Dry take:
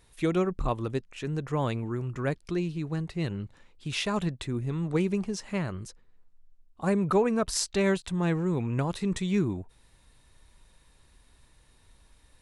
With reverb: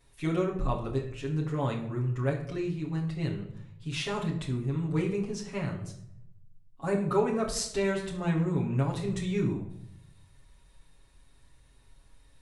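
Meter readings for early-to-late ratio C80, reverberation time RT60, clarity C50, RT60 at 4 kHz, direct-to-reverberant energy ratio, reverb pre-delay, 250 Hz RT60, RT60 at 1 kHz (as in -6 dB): 11.0 dB, 0.70 s, 8.0 dB, 0.45 s, -4.5 dB, 7 ms, 0.90 s, 0.65 s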